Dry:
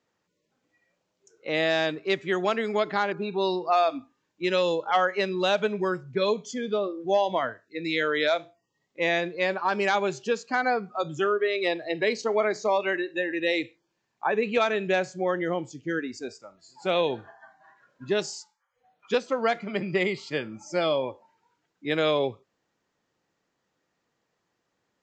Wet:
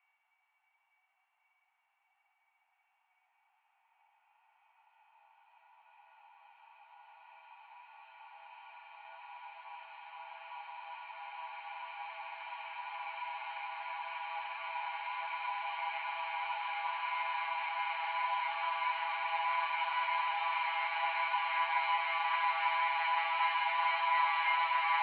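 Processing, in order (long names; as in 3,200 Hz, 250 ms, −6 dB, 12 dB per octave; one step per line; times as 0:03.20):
gain on one half-wave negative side −12 dB
extreme stretch with random phases 38×, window 1.00 s, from 0:00.94
single-sideband voice off tune +350 Hz 430–2,700 Hz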